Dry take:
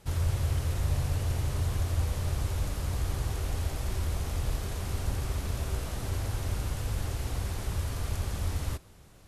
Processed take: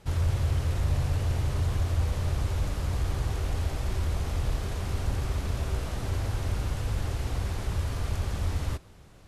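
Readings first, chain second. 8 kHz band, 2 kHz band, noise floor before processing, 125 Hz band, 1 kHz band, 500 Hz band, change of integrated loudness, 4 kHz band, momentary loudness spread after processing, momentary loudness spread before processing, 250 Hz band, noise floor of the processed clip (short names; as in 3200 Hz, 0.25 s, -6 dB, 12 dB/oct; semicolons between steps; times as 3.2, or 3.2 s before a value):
-2.5 dB, +2.0 dB, -53 dBFS, +2.5 dB, +2.0 dB, +2.5 dB, +2.0 dB, +0.5 dB, 4 LU, 4 LU, +2.5 dB, -50 dBFS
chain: high shelf 8100 Hz -10.5 dB; in parallel at -9.5 dB: hard clip -24.5 dBFS, distortion -18 dB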